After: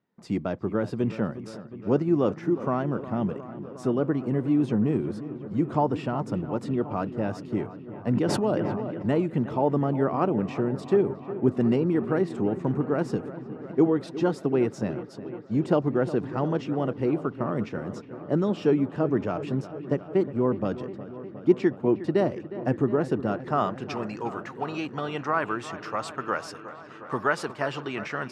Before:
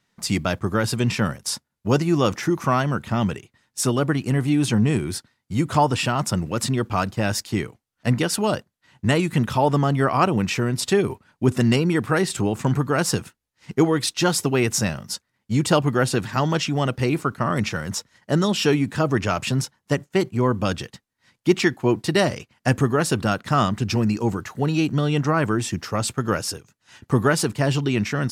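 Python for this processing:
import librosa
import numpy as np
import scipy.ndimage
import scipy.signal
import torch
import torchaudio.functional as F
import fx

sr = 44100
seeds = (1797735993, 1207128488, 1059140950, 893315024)

p1 = fx.filter_sweep_bandpass(x, sr, from_hz=360.0, to_hz=1100.0, start_s=23.29, end_s=23.96, q=0.84)
p2 = p1 + fx.echo_wet_lowpass(p1, sr, ms=360, feedback_pct=77, hz=2800.0, wet_db=-14.5, dry=0)
p3 = fx.sustainer(p2, sr, db_per_s=21.0, at=(8.09, 9.15))
y = p3 * librosa.db_to_amplitude(-1.5)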